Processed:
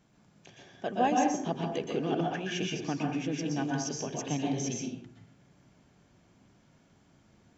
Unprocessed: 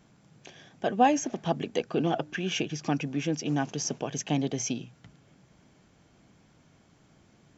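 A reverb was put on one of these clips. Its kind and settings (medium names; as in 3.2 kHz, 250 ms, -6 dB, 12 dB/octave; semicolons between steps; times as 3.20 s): plate-style reverb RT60 0.55 s, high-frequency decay 0.55×, pre-delay 110 ms, DRR -1 dB; trim -6 dB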